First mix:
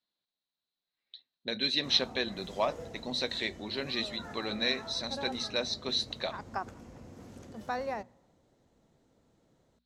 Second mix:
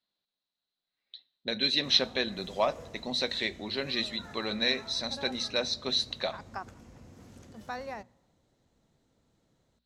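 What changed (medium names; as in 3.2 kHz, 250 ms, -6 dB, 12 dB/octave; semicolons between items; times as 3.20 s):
speech: send on; background: add peaking EQ 480 Hz -5 dB 2.7 oct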